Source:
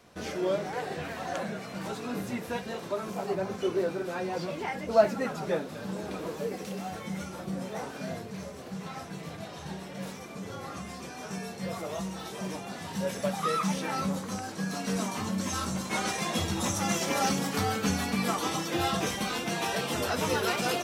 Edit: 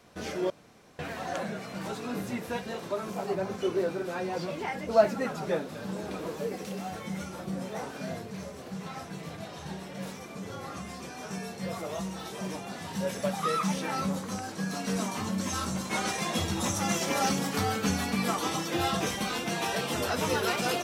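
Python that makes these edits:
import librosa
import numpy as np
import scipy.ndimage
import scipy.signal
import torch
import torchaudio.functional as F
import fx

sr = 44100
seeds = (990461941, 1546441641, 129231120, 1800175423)

y = fx.edit(x, sr, fx.room_tone_fill(start_s=0.5, length_s=0.49), tone=tone)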